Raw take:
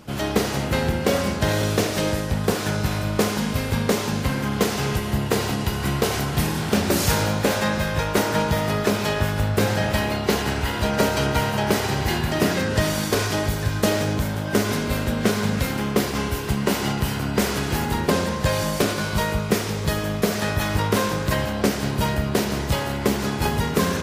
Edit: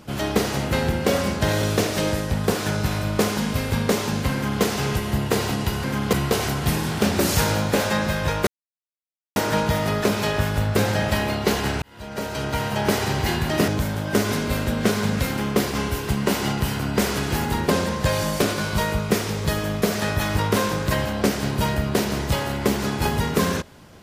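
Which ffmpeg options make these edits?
-filter_complex "[0:a]asplit=6[a][b][c][d][e][f];[a]atrim=end=5.842[g];[b]atrim=start=4.338:end=4.632[h];[c]atrim=start=5.838:end=8.18,asetpts=PTS-STARTPTS,afade=t=out:st=2.338:d=0.004:c=hsin,apad=pad_dur=0.89[i];[d]atrim=start=8.18:end=10.64,asetpts=PTS-STARTPTS,afade=t=in:d=0.004:c=hsin,afade=t=out:st=2.456:d=0.004:c=hsin[j];[e]atrim=start=10.64:end=12.502,asetpts=PTS-STARTPTS,afade=t=in:d=1.11[k];[f]atrim=start=14.078[l];[g][h]acrossfade=d=0.004:c1=hsin:c2=hsin[m];[i][j][k]concat=n=3:v=0:a=1[n];[m][n]acrossfade=d=0.004:c1=hsin:c2=hsin[o];[o][l]acrossfade=d=0.004:c1=hsin:c2=hsin"

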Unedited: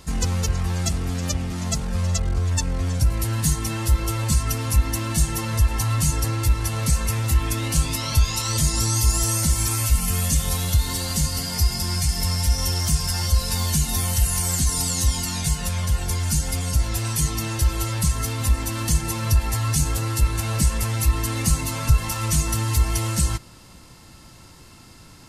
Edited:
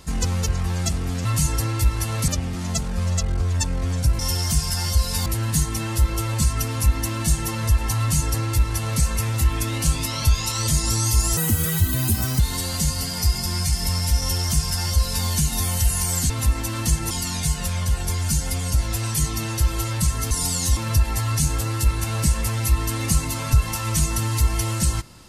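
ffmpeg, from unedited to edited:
-filter_complex "[0:a]asplit=11[a][b][c][d][e][f][g][h][i][j][k];[a]atrim=end=1.252[l];[b]atrim=start=5.888:end=6.922[m];[c]atrim=start=1.248:end=3.162[n];[d]atrim=start=12.558:end=13.632[o];[e]atrim=start=3.158:end=9.274[p];[f]atrim=start=9.27:end=10.76,asetpts=PTS-STARTPTS,asetrate=63945,aresample=44100[q];[g]atrim=start=10.756:end=14.662[r];[h]atrim=start=18.318:end=19.132[s];[i]atrim=start=15.118:end=18.322[t];[j]atrim=start=14.658:end=15.122[u];[k]atrim=start=19.128[v];[l][m]acrossfade=d=0.004:c1=hsin:c2=hsin[w];[w][n]acrossfade=d=0.004:c1=hsin:c2=hsin[x];[x][o]acrossfade=d=0.004:c1=hsin:c2=hsin[y];[y][p]acrossfade=d=0.004:c1=hsin:c2=hsin[z];[z][q]acrossfade=d=0.004:c1=hsin:c2=hsin[aa];[aa][r]acrossfade=d=0.004:c1=hsin:c2=hsin[ab];[ab][s]acrossfade=d=0.004:c1=hsin:c2=hsin[ac];[ac][t]acrossfade=d=0.004:c1=hsin:c2=hsin[ad];[ad][u]acrossfade=d=0.004:c1=hsin:c2=hsin[ae];[ae][v]acrossfade=d=0.004:c1=hsin:c2=hsin"

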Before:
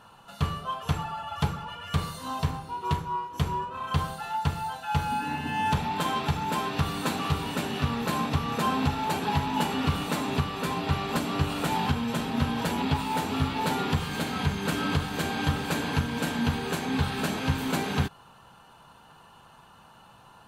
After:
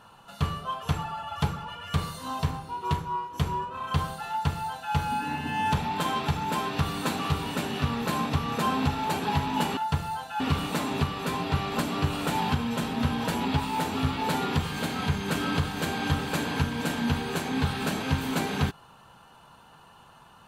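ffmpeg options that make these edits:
-filter_complex "[0:a]asplit=3[a][b][c];[a]atrim=end=9.772[d];[b]atrim=start=4.298:end=4.932[e];[c]atrim=start=9.768[f];[d][e]acrossfade=d=0.004:c1=hsin:c2=hsin[g];[g][f]acrossfade=d=0.004:c1=hsin:c2=hsin"

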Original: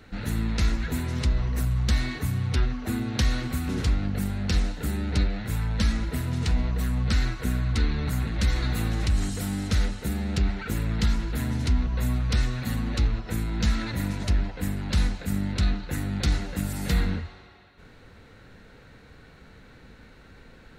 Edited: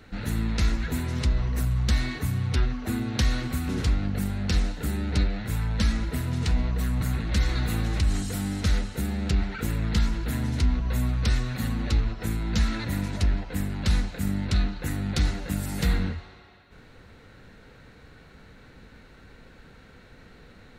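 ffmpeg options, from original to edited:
-filter_complex "[0:a]asplit=2[a][b];[a]atrim=end=7.012[c];[b]atrim=start=8.078[d];[c][d]acrossfade=d=0.004:c1=hsin:c2=hsin"

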